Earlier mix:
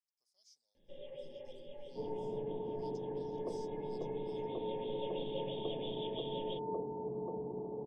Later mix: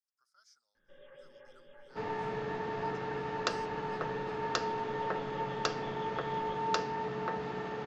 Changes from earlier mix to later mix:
first sound -8.0 dB; second sound: remove rippled Chebyshev low-pass 1400 Hz, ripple 6 dB; master: remove Butterworth band-stop 1400 Hz, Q 0.69

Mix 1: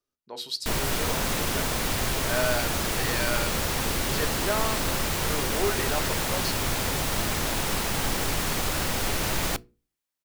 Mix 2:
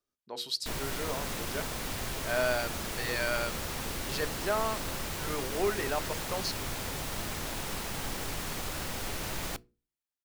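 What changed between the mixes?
speech: send -8.0 dB; background -9.0 dB

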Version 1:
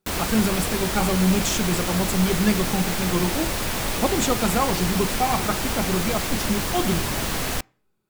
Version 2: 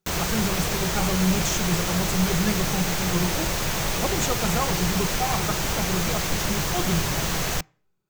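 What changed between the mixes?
speech -4.5 dB; master: add thirty-one-band EQ 160 Hz +8 dB, 250 Hz -9 dB, 6300 Hz +5 dB, 10000 Hz -6 dB

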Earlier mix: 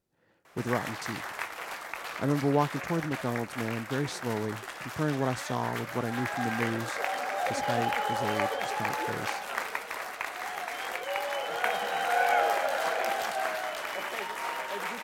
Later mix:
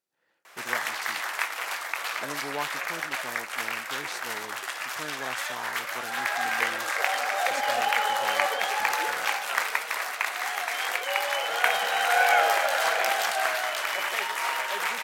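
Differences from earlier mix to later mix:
background +9.0 dB; master: add HPF 1300 Hz 6 dB/oct

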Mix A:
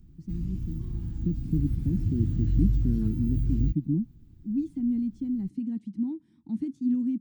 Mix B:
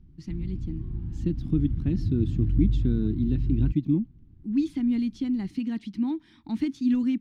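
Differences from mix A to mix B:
speech: remove band-pass 180 Hz, Q 1.5; master: add air absorption 310 m

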